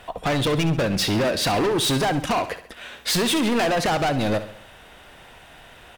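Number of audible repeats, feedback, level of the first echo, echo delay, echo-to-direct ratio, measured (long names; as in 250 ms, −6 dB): 4, 48%, −12.5 dB, 67 ms, −11.5 dB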